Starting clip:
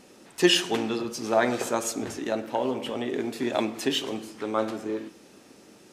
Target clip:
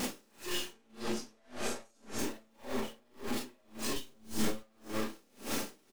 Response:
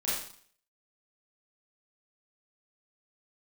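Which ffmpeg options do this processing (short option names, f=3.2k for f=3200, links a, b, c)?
-filter_complex "[0:a]aeval=exprs='val(0)+0.5*0.0473*sgn(val(0))':c=same,aeval=exprs='(tanh(28.2*val(0)+0.3)-tanh(0.3))/28.2':c=same[a];[1:a]atrim=start_sample=2205,afade=t=out:st=0.18:d=0.01,atrim=end_sample=8379[b];[a][b]afir=irnorm=-1:irlink=0,alimiter=limit=-20.5dB:level=0:latency=1,asettb=1/sr,asplit=3[c][d][e];[c]atrim=end=0.734[f];[d]atrim=start=0.73:end=2.19,asetpts=PTS-STARTPTS,afade=t=in:d=0.004:c=qsin,afade=t=out:st=1.456:d=0.004:c=qsin,lowpass=9.7k[g];[e]atrim=start=2.186[h];[f][g]acrossfade=d=0.004:c1=hsin:c2=qsin[i];[i][h]acrossfade=d=0.004:c1=qsin:c2=hsin,aecho=1:1:561:0.168,acompressor=threshold=-30dB:ratio=6,asettb=1/sr,asplit=3[j][k][l];[j]atrim=end=3.964[m];[k]atrim=start=3.96:end=4.63,asetpts=PTS-STARTPTS,afade=t=in:d=0.004:c=qsin,afade=t=out:st=0.666:d=0.004:c=qsin,bass=f=250:g=9,treble=f=4k:g=4[n];[l]atrim=start=4.626[o];[m][n]acrossfade=d=0.004:c1=hsin:c2=qsin[p];[p][o]acrossfade=d=0.004:c1=qsin:c2=hsin,aeval=exprs='val(0)*pow(10,-36*(0.5-0.5*cos(2*PI*1.8*n/s))/20)':c=same,volume=1.5dB"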